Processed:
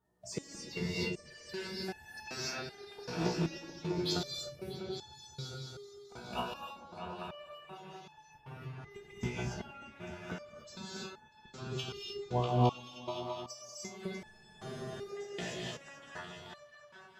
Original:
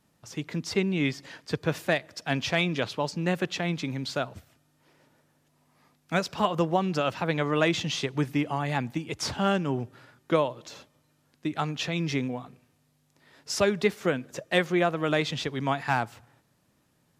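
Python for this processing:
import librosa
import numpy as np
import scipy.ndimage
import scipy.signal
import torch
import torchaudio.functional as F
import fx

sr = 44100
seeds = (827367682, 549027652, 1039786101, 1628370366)

y = fx.spec_quant(x, sr, step_db=30)
y = fx.noise_reduce_blind(y, sr, reduce_db=11)
y = fx.gate_flip(y, sr, shuts_db=-23.0, range_db=-30)
y = fx.notch_comb(y, sr, f0_hz=270.0)
y = fx.rev_gated(y, sr, seeds[0], gate_ms=330, shape='rising', drr_db=-5.0)
y = fx.vibrato(y, sr, rate_hz=3.6, depth_cents=9.7)
y = fx.echo_opening(y, sr, ms=215, hz=200, octaves=2, feedback_pct=70, wet_db=0)
y = fx.spec_freeze(y, sr, seeds[1], at_s=14.26, hold_s=0.83)
y = fx.resonator_held(y, sr, hz=2.6, low_hz=61.0, high_hz=860.0)
y = F.gain(torch.from_numpy(y), 10.5).numpy()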